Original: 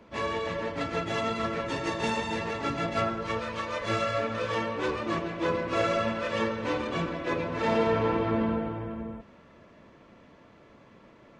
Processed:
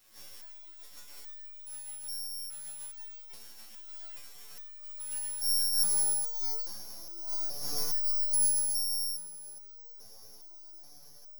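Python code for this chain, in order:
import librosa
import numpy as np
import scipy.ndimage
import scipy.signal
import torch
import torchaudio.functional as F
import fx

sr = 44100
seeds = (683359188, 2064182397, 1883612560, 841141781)

p1 = fx.delta_mod(x, sr, bps=64000, step_db=-39.5)
p2 = scipy.signal.sosfilt(scipy.signal.butter(2, 59.0, 'highpass', fs=sr, output='sos'), p1)
p3 = fx.low_shelf(p2, sr, hz=270.0, db=10.0)
p4 = fx.tube_stage(p3, sr, drive_db=34.0, bias=0.75, at=(6.65, 7.16), fade=0.02)
p5 = p4 + fx.echo_split(p4, sr, split_hz=1800.0, low_ms=106, high_ms=498, feedback_pct=52, wet_db=-6.0, dry=0)
p6 = fx.filter_sweep_bandpass(p5, sr, from_hz=5100.0, to_hz=380.0, start_s=4.71, end_s=5.86, q=0.96)
p7 = np.abs(p6)
p8 = (np.kron(p7[::8], np.eye(8)[0]) * 8)[:len(p7)]
p9 = fx.resonator_held(p8, sr, hz=2.4, low_hz=110.0, high_hz=790.0)
y = p9 * librosa.db_to_amplitude(-5.5)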